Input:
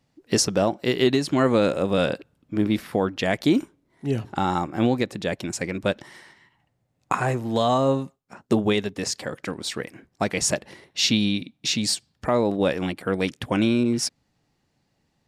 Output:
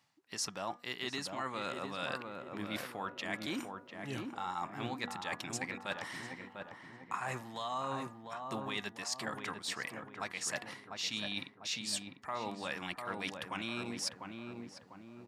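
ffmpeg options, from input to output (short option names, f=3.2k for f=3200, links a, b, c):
-filter_complex "[0:a]highpass=100,lowshelf=f=690:t=q:w=1.5:g=-11,bandreject=f=1.5k:w=27,bandreject=f=241.6:t=h:w=4,bandreject=f=483.2:t=h:w=4,bandreject=f=724.8:t=h:w=4,bandreject=f=966.4:t=h:w=4,bandreject=f=1.208k:t=h:w=4,bandreject=f=1.4496k:t=h:w=4,bandreject=f=1.6912k:t=h:w=4,bandreject=f=1.9328k:t=h:w=4,areverse,acompressor=threshold=-38dB:ratio=5,areverse,asplit=2[a][b];[b]adelay=698,lowpass=f=1.1k:p=1,volume=-3.5dB,asplit=2[c][d];[d]adelay=698,lowpass=f=1.1k:p=1,volume=0.52,asplit=2[e][f];[f]adelay=698,lowpass=f=1.1k:p=1,volume=0.52,asplit=2[g][h];[h]adelay=698,lowpass=f=1.1k:p=1,volume=0.52,asplit=2[i][j];[j]adelay=698,lowpass=f=1.1k:p=1,volume=0.52,asplit=2[k][l];[l]adelay=698,lowpass=f=1.1k:p=1,volume=0.52,asplit=2[m][n];[n]adelay=698,lowpass=f=1.1k:p=1,volume=0.52[o];[a][c][e][g][i][k][m][o]amix=inputs=8:normalize=0,volume=1dB"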